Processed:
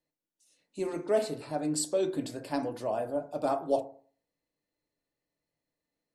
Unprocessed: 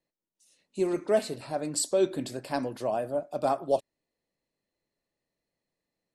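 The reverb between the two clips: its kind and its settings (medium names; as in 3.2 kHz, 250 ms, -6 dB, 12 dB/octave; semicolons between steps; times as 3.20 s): FDN reverb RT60 0.46 s, low-frequency decay 1.05×, high-frequency decay 0.35×, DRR 5 dB; trim -3.5 dB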